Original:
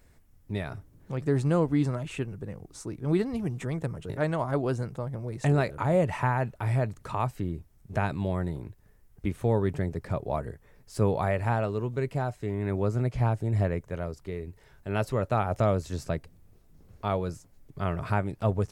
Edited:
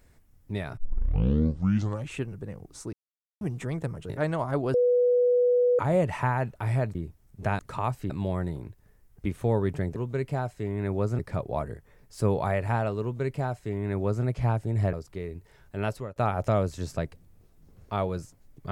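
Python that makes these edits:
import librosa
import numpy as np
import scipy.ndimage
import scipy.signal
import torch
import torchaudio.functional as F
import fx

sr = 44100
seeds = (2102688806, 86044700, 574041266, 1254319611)

y = fx.edit(x, sr, fx.tape_start(start_s=0.77, length_s=1.37),
    fx.silence(start_s=2.93, length_s=0.48),
    fx.bleep(start_s=4.74, length_s=1.05, hz=491.0, db=-18.5),
    fx.move(start_s=6.95, length_s=0.51, to_s=8.1),
    fx.duplicate(start_s=11.79, length_s=1.23, to_s=9.96),
    fx.cut(start_s=13.7, length_s=0.35),
    fx.fade_out_to(start_s=14.93, length_s=0.35, floor_db=-21.5), tone=tone)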